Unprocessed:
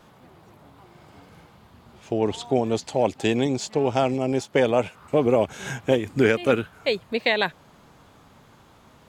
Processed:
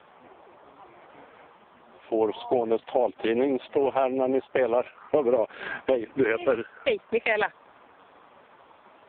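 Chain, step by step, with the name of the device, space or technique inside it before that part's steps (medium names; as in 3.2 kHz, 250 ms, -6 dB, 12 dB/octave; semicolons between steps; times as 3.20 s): high-pass 190 Hz 12 dB/octave; 4.60–5.19 s: dynamic bell 4.5 kHz, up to -5 dB, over -60 dBFS, Q 5.8; voicemail (band-pass 350–3000 Hz; compression 6:1, threshold -25 dBFS, peak gain reduction 9.5 dB; trim +6.5 dB; AMR-NB 4.75 kbps 8 kHz)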